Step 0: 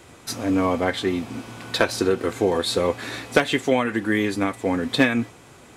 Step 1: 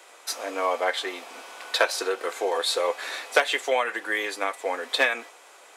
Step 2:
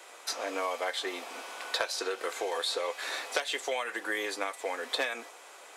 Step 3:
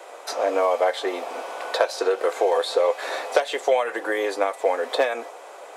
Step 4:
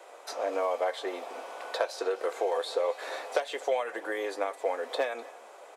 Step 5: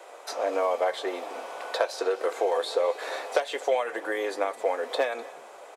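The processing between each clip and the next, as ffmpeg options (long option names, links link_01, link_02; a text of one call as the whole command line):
ffmpeg -i in.wav -af "highpass=frequency=510:width=0.5412,highpass=frequency=510:width=1.3066" out.wav
ffmpeg -i in.wav -filter_complex "[0:a]acrossover=split=1600|3600|7200[link_01][link_02][link_03][link_04];[link_01]acompressor=threshold=-32dB:ratio=4[link_05];[link_02]acompressor=threshold=-41dB:ratio=4[link_06];[link_03]acompressor=threshold=-34dB:ratio=4[link_07];[link_04]acompressor=threshold=-49dB:ratio=4[link_08];[link_05][link_06][link_07][link_08]amix=inputs=4:normalize=0" out.wav
ffmpeg -i in.wav -af "equalizer=frequency=580:width=0.65:gain=15" out.wav
ffmpeg -i in.wav -af "aecho=1:1:251:0.0891,volume=-8.5dB" out.wav
ffmpeg -i in.wav -filter_complex "[0:a]asplit=3[link_01][link_02][link_03];[link_02]adelay=187,afreqshift=-63,volume=-24dB[link_04];[link_03]adelay=374,afreqshift=-126,volume=-33.1dB[link_05];[link_01][link_04][link_05]amix=inputs=3:normalize=0,volume=3.5dB" out.wav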